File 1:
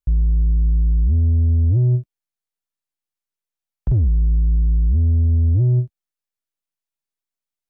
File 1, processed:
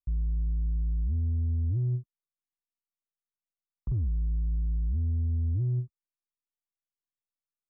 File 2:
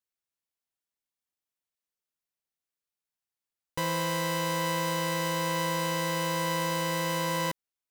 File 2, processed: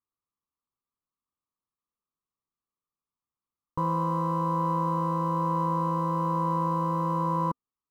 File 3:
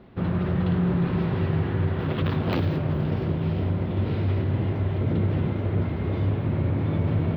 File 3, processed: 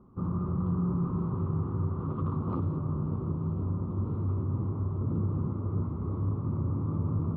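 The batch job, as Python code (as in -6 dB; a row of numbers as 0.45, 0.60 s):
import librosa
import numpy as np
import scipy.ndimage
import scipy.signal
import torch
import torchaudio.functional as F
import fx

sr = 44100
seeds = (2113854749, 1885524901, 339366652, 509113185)

y = fx.curve_eq(x, sr, hz=(260.0, 460.0, 680.0, 1200.0, 1700.0), db=(0, -5, -12, 6, -28))
y = y * 10.0 ** (-30 / 20.0) / np.sqrt(np.mean(np.square(y)))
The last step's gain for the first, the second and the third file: -12.0, +5.0, -5.5 dB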